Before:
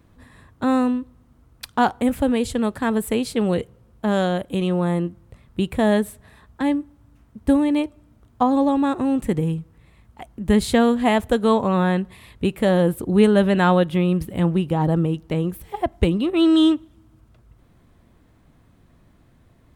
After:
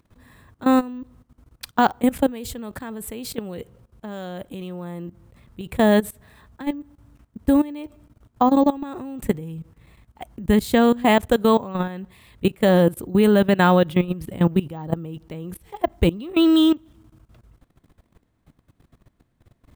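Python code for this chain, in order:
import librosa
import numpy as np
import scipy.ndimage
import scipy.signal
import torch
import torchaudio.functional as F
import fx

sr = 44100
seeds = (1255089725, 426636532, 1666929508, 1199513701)

y = fx.high_shelf(x, sr, hz=6900.0, db=5.5)
y = fx.level_steps(y, sr, step_db=18)
y = np.repeat(scipy.signal.resample_poly(y, 1, 2), 2)[:len(y)]
y = F.gain(torch.from_numpy(y), 3.5).numpy()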